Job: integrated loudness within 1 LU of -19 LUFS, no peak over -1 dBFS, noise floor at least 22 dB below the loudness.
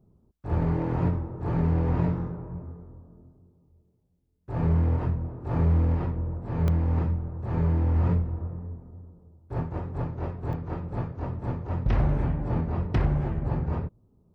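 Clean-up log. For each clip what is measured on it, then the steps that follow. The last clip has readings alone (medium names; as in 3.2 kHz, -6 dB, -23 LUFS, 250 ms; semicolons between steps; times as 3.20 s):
clipped samples 0.3%; clipping level -16.0 dBFS; dropouts 2; longest dropout 1.1 ms; loudness -28.0 LUFS; peak level -16.0 dBFS; loudness target -19.0 LUFS
-> clip repair -16 dBFS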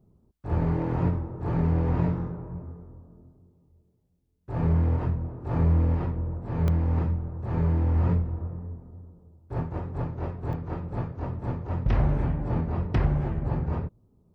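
clipped samples 0.0%; dropouts 2; longest dropout 1.1 ms
-> interpolate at 6.68/10.53 s, 1.1 ms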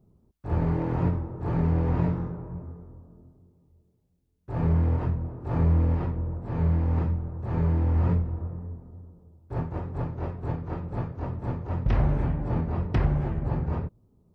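dropouts 0; loudness -28.0 LUFS; peak level -13.0 dBFS; loudness target -19.0 LUFS
-> trim +9 dB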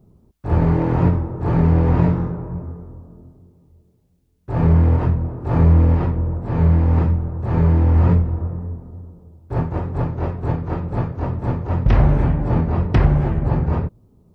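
loudness -19.0 LUFS; peak level -4.0 dBFS; noise floor -57 dBFS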